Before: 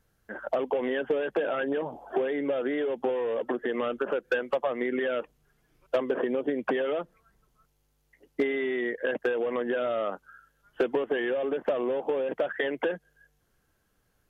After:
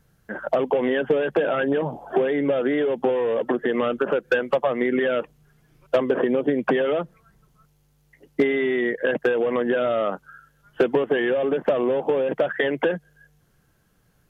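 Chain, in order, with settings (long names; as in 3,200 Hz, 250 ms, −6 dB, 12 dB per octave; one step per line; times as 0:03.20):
parametric band 150 Hz +9.5 dB 0.78 octaves
level +6 dB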